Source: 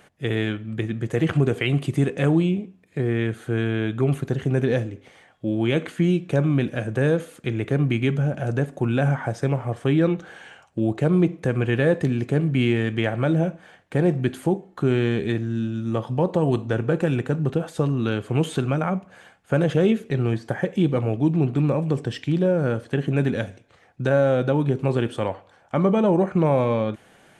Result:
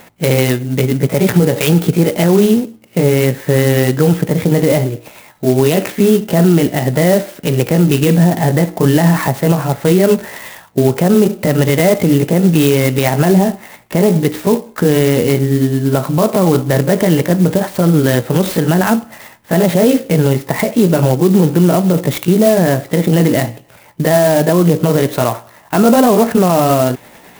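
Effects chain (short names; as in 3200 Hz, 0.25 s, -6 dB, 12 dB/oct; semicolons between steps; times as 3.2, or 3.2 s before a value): delay-line pitch shifter +3 st; maximiser +15.5 dB; clock jitter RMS 0.05 ms; gain -1 dB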